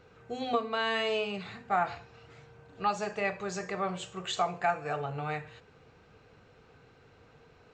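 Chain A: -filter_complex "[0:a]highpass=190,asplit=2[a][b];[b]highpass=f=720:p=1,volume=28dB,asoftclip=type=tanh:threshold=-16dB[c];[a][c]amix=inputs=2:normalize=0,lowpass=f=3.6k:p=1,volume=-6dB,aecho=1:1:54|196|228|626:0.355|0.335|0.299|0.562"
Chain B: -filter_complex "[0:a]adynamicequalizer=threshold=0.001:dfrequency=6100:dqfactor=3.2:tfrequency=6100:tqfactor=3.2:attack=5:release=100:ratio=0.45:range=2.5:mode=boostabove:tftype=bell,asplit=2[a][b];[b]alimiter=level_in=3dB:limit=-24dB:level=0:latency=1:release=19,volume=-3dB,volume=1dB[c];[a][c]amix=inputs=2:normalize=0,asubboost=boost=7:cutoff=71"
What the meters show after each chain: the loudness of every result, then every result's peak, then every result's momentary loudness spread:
-23.0, -28.5 LUFS; -11.0, -14.0 dBFS; 18, 19 LU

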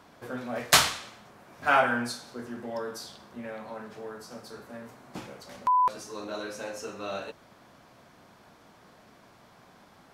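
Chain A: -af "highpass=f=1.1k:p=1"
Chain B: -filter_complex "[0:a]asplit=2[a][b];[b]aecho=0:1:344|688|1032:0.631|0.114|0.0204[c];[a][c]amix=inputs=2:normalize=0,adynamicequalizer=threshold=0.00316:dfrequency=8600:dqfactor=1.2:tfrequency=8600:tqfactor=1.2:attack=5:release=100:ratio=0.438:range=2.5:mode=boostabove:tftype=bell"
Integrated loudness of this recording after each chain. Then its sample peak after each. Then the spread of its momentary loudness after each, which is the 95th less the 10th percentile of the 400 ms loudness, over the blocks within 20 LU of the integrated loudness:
-29.5, -27.0 LUFS; -5.0, -4.5 dBFS; 25, 20 LU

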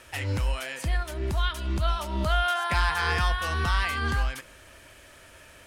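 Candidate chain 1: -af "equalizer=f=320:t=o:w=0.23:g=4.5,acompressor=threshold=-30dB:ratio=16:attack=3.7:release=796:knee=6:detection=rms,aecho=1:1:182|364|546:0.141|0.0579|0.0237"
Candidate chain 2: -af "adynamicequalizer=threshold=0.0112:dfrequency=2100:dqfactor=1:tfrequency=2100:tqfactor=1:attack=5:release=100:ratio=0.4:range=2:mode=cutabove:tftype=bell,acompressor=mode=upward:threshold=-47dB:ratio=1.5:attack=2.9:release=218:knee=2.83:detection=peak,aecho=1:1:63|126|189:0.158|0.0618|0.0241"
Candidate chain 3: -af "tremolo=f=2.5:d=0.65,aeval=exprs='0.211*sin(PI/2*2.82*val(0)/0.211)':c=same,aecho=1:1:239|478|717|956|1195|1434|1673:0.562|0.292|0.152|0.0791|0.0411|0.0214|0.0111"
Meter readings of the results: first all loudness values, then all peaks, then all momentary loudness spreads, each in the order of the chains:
-38.0, -28.0, -19.5 LUFS; -23.5, -13.5, -8.0 dBFS; 13, 5, 15 LU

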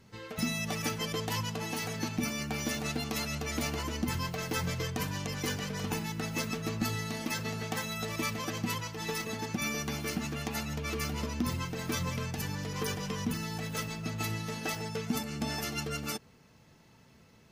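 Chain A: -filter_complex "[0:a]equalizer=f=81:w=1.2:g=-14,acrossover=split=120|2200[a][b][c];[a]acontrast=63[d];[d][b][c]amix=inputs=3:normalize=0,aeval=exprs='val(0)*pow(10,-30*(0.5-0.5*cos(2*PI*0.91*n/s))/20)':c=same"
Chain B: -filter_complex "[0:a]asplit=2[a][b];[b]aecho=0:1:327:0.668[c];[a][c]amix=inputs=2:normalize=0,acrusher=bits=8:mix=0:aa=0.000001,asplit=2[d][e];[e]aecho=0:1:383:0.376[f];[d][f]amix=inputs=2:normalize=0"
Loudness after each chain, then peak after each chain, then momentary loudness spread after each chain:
-40.0, -32.5 LUFS; -19.5, -17.5 dBFS; 19, 2 LU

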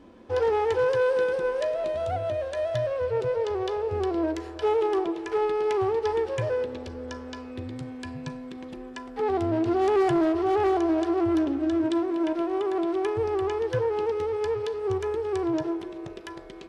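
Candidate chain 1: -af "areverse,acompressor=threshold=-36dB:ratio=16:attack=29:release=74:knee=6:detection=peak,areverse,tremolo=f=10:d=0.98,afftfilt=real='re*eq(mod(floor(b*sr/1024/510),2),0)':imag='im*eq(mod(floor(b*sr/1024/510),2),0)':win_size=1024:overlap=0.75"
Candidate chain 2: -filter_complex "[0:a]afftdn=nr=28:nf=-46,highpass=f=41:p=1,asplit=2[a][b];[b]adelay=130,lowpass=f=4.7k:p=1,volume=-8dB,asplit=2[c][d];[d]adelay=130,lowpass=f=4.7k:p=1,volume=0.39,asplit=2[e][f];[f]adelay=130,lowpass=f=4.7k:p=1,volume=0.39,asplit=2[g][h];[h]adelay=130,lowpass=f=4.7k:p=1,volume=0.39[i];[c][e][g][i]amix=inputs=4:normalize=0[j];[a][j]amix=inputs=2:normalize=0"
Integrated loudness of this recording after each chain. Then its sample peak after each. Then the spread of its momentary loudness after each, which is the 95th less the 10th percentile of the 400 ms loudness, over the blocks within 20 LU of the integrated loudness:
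-42.5, -26.0 LUFS; -28.5, -13.0 dBFS; 9, 13 LU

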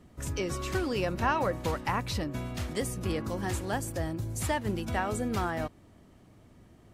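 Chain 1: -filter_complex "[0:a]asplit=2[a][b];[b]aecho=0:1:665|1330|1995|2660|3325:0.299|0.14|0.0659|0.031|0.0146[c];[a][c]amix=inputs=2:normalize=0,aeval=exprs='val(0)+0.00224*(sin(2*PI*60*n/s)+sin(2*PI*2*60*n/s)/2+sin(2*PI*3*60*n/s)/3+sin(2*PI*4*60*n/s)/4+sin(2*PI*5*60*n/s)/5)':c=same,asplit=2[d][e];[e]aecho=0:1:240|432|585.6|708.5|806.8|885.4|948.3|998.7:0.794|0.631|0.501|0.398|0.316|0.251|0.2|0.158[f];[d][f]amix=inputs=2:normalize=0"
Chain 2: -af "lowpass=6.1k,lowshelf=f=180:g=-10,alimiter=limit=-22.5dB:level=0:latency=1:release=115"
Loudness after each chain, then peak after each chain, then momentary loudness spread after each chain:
-28.0, -35.5 LUFS; -12.5, -22.5 dBFS; 7, 5 LU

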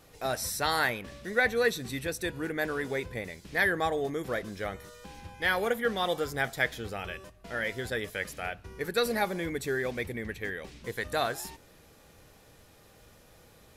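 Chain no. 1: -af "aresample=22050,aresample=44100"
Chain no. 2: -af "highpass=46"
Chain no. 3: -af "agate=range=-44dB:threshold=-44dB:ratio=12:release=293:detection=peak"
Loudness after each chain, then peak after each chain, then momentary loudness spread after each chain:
-31.5, -31.0, -31.0 LUFS; -11.5, -11.5, -11.5 dBFS; 11, 11, 11 LU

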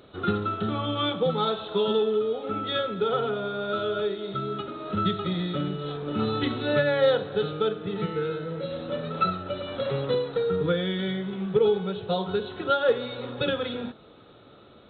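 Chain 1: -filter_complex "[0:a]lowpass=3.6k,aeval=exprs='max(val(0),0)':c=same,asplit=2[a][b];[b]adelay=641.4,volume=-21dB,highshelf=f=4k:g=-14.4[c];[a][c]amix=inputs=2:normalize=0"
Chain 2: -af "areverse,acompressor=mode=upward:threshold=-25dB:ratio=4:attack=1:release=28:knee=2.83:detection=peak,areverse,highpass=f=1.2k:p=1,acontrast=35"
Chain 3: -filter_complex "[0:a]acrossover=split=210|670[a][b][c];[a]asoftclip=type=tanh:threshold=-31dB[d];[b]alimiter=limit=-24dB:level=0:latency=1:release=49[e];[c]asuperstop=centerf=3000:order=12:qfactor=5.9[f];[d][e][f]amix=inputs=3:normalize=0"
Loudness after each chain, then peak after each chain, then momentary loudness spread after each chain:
-32.0, -27.5, -28.5 LUFS; -12.0, -10.5, -12.5 dBFS; 9, 8, 7 LU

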